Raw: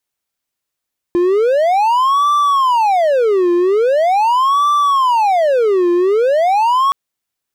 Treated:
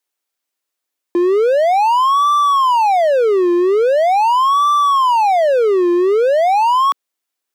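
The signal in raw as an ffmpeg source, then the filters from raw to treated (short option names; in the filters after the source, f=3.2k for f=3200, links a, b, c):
-f lavfi -i "aevalsrc='0.398*(1-4*abs(mod((759*t-411/(2*PI*0.42)*sin(2*PI*0.42*t))+0.25,1)-0.5))':d=5.77:s=44100"
-af "highpass=f=260:w=0.5412,highpass=f=260:w=1.3066"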